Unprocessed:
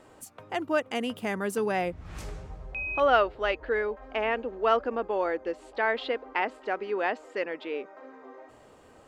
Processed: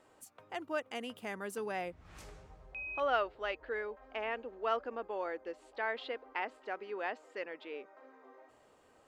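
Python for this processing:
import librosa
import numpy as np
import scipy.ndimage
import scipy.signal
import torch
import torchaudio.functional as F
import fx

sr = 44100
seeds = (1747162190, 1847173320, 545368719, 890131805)

y = fx.low_shelf(x, sr, hz=310.0, db=-7.0)
y = y * librosa.db_to_amplitude(-8.5)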